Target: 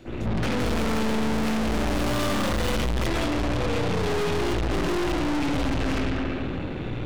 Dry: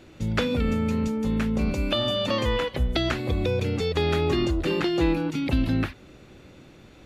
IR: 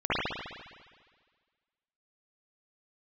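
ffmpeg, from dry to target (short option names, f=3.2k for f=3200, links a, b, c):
-filter_complex "[0:a]acrossover=split=410|3900[a][b][c];[a]acompressor=threshold=-29dB:ratio=4[d];[b]acompressor=threshold=-33dB:ratio=4[e];[c]acompressor=threshold=-50dB:ratio=4[f];[d][e][f]amix=inputs=3:normalize=0[g];[1:a]atrim=start_sample=2205[h];[g][h]afir=irnorm=-1:irlink=0,asettb=1/sr,asplit=3[i][j][k];[i]atrim=end=0.604[l];[j]atrim=start=0.6:end=3.07,asetpts=PTS-STARTPTS,afade=t=in:d=0.004:c=qsin,afade=t=out:st=2.466:d=0.004:c=qsin,acontrast=72[m];[k]atrim=start=3.066[n];[l][m]acrossfade=d=0.004:c1=hsin:c2=qsin[o];[o][n]acrossfade=d=0.004:c1=qsin:c2=hsin,lowshelf=f=380:g=5.5,aeval=exprs='(tanh(25.1*val(0)+0.6)-tanh(0.6))/25.1':c=same,volume=3.5dB"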